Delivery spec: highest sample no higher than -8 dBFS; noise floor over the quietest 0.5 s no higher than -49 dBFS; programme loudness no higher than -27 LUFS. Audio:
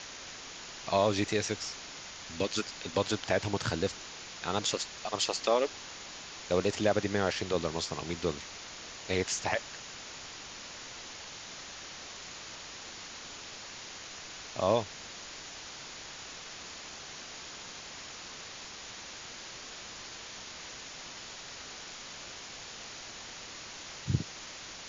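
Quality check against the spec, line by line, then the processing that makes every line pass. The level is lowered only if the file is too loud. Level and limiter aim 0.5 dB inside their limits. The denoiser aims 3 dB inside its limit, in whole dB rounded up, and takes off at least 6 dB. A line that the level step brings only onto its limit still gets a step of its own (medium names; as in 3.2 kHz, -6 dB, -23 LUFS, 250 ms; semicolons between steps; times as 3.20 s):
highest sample -12.5 dBFS: pass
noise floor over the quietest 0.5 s -45 dBFS: fail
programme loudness -35.5 LUFS: pass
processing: noise reduction 7 dB, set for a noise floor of -45 dBFS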